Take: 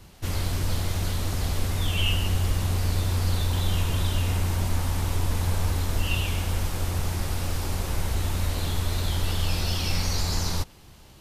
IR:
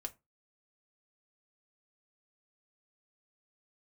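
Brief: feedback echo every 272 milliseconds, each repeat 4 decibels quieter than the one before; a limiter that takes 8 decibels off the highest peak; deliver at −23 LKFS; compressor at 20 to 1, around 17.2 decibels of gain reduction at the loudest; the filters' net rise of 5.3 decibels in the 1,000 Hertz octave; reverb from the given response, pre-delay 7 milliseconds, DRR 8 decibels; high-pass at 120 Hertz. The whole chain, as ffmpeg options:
-filter_complex "[0:a]highpass=120,equalizer=frequency=1000:width_type=o:gain=6.5,acompressor=threshold=-40dB:ratio=20,alimiter=level_in=13.5dB:limit=-24dB:level=0:latency=1,volume=-13.5dB,aecho=1:1:272|544|816|1088|1360|1632|1904|2176|2448:0.631|0.398|0.25|0.158|0.0994|0.0626|0.0394|0.0249|0.0157,asplit=2[link_01][link_02];[1:a]atrim=start_sample=2205,adelay=7[link_03];[link_02][link_03]afir=irnorm=-1:irlink=0,volume=-5.5dB[link_04];[link_01][link_04]amix=inputs=2:normalize=0,volume=21dB"

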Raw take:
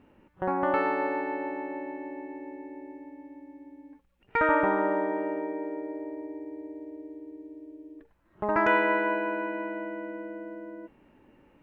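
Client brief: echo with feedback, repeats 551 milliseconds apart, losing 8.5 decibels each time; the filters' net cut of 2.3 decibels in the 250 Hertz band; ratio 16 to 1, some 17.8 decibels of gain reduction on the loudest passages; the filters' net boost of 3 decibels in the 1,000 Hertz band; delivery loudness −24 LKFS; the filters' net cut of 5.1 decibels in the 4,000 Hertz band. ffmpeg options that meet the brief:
ffmpeg -i in.wav -af "equalizer=frequency=250:width_type=o:gain=-3.5,equalizer=frequency=1000:width_type=o:gain=4,equalizer=frequency=4000:width_type=o:gain=-9,acompressor=threshold=-35dB:ratio=16,aecho=1:1:551|1102|1653|2204:0.376|0.143|0.0543|0.0206,volume=17dB" out.wav

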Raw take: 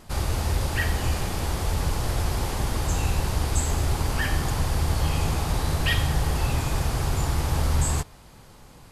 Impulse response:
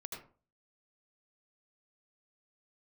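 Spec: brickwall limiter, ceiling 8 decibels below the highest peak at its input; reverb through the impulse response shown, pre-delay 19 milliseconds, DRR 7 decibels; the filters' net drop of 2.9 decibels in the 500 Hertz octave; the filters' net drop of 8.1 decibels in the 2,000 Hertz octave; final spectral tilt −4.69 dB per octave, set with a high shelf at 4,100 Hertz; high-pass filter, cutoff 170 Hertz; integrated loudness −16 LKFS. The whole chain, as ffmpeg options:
-filter_complex "[0:a]highpass=170,equalizer=frequency=500:width_type=o:gain=-3,equalizer=frequency=2000:width_type=o:gain=-8,highshelf=frequency=4100:gain=-8.5,alimiter=level_in=2.5dB:limit=-24dB:level=0:latency=1,volume=-2.5dB,asplit=2[link_01][link_02];[1:a]atrim=start_sample=2205,adelay=19[link_03];[link_02][link_03]afir=irnorm=-1:irlink=0,volume=-5dB[link_04];[link_01][link_04]amix=inputs=2:normalize=0,volume=19.5dB"

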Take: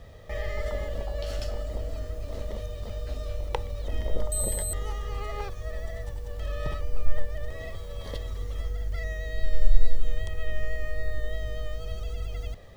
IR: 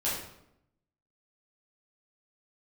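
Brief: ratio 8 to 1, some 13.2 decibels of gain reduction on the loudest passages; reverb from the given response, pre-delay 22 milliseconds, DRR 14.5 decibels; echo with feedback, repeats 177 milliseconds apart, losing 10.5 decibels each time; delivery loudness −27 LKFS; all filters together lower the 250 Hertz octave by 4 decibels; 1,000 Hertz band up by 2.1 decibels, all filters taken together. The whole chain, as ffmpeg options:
-filter_complex "[0:a]equalizer=frequency=250:width_type=o:gain=-6,equalizer=frequency=1000:width_type=o:gain=3,acompressor=threshold=-21dB:ratio=8,aecho=1:1:177|354|531:0.299|0.0896|0.0269,asplit=2[link_01][link_02];[1:a]atrim=start_sample=2205,adelay=22[link_03];[link_02][link_03]afir=irnorm=-1:irlink=0,volume=-22dB[link_04];[link_01][link_04]amix=inputs=2:normalize=0,volume=7.5dB"

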